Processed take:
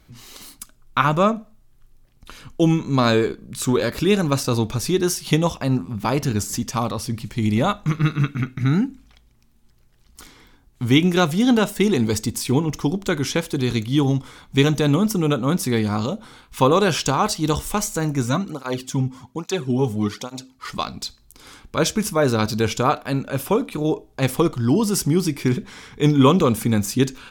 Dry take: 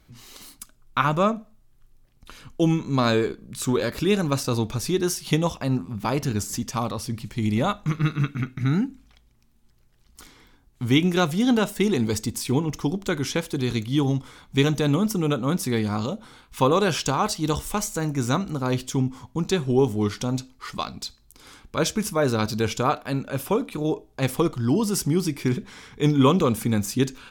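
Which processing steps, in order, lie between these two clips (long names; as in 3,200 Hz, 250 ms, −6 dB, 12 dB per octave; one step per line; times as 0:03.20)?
0:18.22–0:20.65: through-zero flanger with one copy inverted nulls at 1.2 Hz, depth 3.4 ms
level +3.5 dB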